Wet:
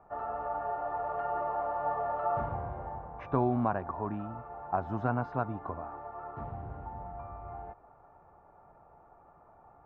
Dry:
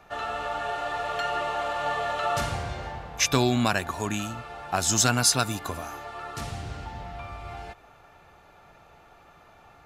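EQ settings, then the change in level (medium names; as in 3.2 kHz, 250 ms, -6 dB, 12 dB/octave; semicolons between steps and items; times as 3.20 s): four-pole ladder low-pass 1.2 kHz, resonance 35%; +1.5 dB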